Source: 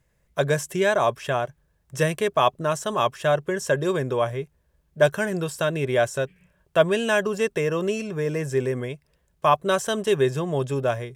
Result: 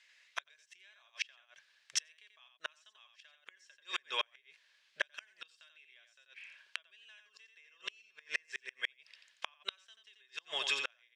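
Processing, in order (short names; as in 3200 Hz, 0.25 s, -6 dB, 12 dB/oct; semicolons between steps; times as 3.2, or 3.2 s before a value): compressor 16:1, threshold -24 dBFS, peak gain reduction 13.5 dB; added harmonics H 3 -42 dB, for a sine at -12 dBFS; Butterworth band-pass 3200 Hz, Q 1.1; on a send: echo 87 ms -6.5 dB; on the sum: flipped gate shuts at -35 dBFS, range -37 dB; gain +16 dB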